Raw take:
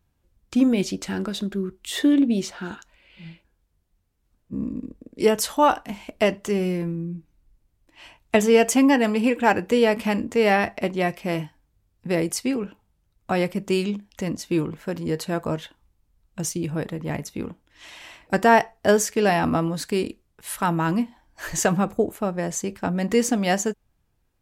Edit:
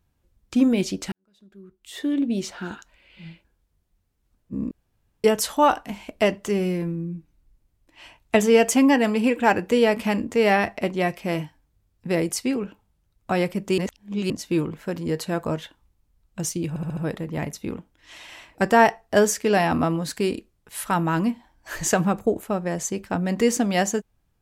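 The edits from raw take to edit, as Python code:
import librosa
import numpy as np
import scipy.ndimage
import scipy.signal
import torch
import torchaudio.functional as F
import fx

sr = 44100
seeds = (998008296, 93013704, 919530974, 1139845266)

y = fx.edit(x, sr, fx.fade_in_span(start_s=1.12, length_s=1.42, curve='qua'),
    fx.room_tone_fill(start_s=4.71, length_s=0.53),
    fx.reverse_span(start_s=13.78, length_s=0.52),
    fx.stutter(start_s=16.69, slice_s=0.07, count=5), tone=tone)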